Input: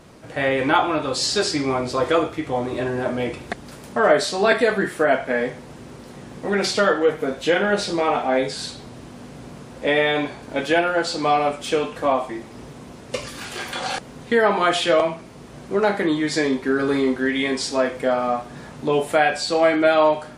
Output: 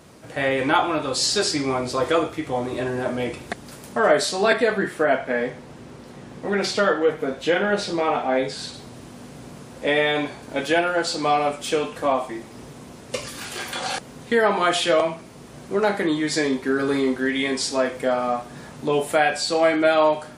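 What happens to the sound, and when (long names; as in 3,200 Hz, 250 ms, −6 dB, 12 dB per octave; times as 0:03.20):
0:04.53–0:08.74: high-shelf EQ 7,000 Hz −11 dB
whole clip: high-pass filter 52 Hz; high-shelf EQ 6,800 Hz +7 dB; level −1.5 dB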